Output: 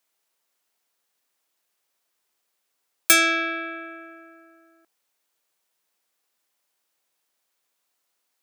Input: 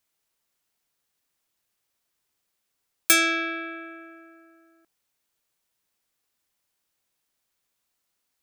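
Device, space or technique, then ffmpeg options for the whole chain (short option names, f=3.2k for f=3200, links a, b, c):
filter by subtraction: -filter_complex "[0:a]asplit=2[a][b];[b]lowpass=570,volume=-1[c];[a][c]amix=inputs=2:normalize=0,volume=2dB"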